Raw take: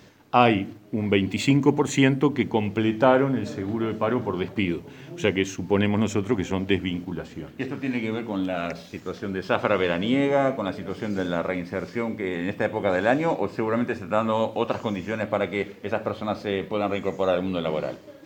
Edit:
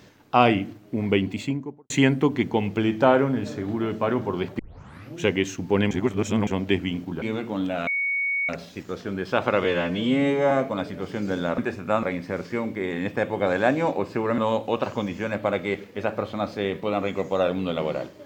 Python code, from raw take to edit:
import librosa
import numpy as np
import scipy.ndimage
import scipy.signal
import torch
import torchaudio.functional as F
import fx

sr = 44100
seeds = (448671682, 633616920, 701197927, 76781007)

y = fx.studio_fade_out(x, sr, start_s=1.06, length_s=0.84)
y = fx.edit(y, sr, fx.tape_start(start_s=4.59, length_s=0.58),
    fx.reverse_span(start_s=5.91, length_s=0.56),
    fx.cut(start_s=7.22, length_s=0.79),
    fx.insert_tone(at_s=8.66, length_s=0.62, hz=2230.0, db=-22.0),
    fx.stretch_span(start_s=9.81, length_s=0.58, factor=1.5),
    fx.move(start_s=13.81, length_s=0.45, to_s=11.46), tone=tone)